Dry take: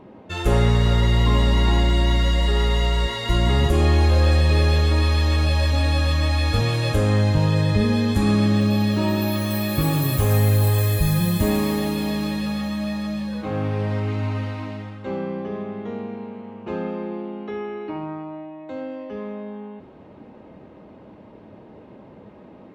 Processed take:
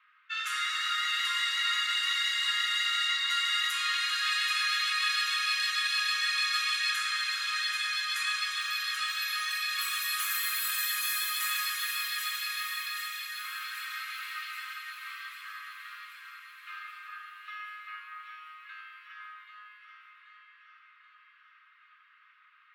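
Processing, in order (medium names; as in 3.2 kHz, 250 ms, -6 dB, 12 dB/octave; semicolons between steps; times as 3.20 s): level-controlled noise filter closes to 2.5 kHz, open at -15 dBFS; steep high-pass 1.2 kHz 96 dB/octave; on a send: echo whose repeats swap between lows and highs 391 ms, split 2.2 kHz, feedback 75%, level -3 dB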